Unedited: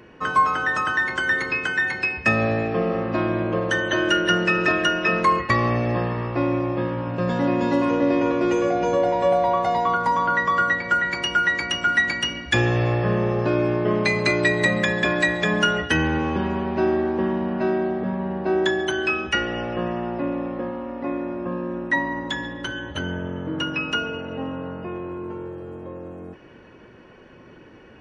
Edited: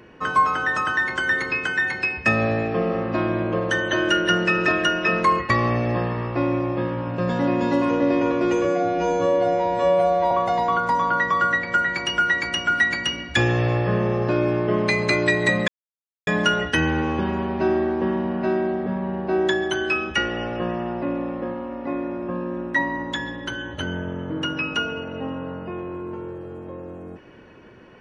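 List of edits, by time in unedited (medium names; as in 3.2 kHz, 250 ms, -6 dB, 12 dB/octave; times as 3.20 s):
8.65–9.48 s: stretch 2×
14.85–15.44 s: mute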